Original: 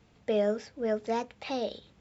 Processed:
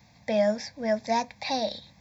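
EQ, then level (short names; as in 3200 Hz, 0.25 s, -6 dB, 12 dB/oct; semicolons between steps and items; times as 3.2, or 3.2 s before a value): HPF 82 Hz; high shelf 3400 Hz +7.5 dB; fixed phaser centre 2000 Hz, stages 8; +7.5 dB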